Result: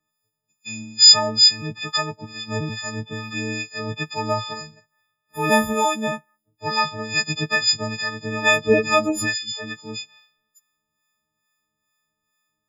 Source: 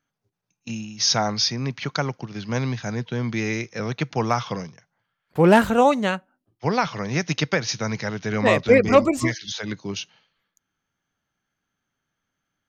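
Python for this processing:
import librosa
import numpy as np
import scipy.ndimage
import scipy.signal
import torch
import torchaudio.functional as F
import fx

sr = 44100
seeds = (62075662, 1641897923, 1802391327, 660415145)

y = fx.freq_snap(x, sr, grid_st=6)
y = fx.harmonic_tremolo(y, sr, hz=2.3, depth_pct=70, crossover_hz=890.0)
y = F.gain(torch.from_numpy(y), -1.0).numpy()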